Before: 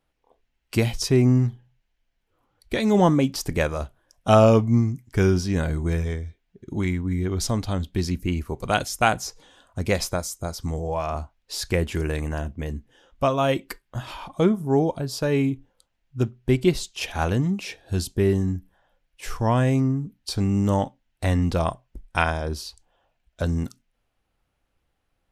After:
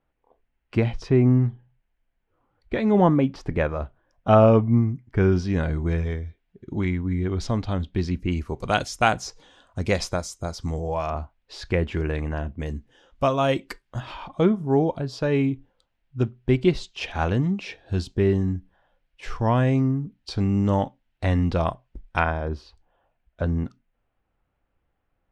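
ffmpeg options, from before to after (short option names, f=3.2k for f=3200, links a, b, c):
-af "asetnsamples=n=441:p=0,asendcmd='5.32 lowpass f 3500;8.31 lowpass f 6300;11.1 lowpass f 3100;12.6 lowpass f 7100;14 lowpass f 3900;22.19 lowpass f 2100',lowpass=2.1k"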